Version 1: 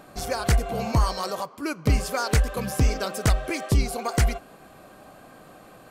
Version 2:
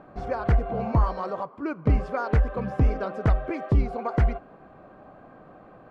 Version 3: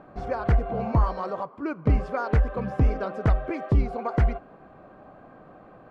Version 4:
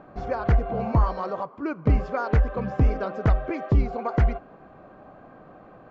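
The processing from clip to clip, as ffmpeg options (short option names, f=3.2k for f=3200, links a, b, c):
-af "lowpass=1.4k"
-af anull
-af "aresample=16000,aresample=44100,volume=1dB"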